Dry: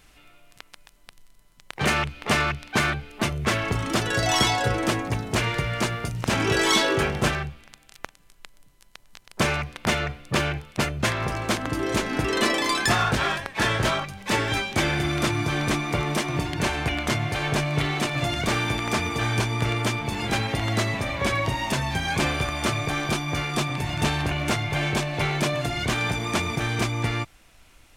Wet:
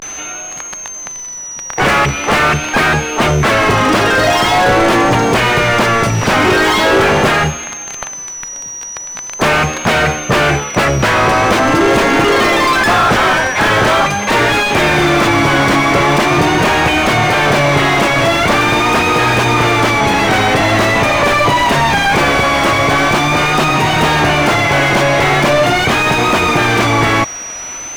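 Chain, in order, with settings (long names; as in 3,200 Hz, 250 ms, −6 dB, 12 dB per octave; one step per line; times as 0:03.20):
steady tone 6,100 Hz −44 dBFS
pitch vibrato 0.43 Hz 90 cents
mid-hump overdrive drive 35 dB, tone 1,200 Hz, clips at −7.5 dBFS
level +6.5 dB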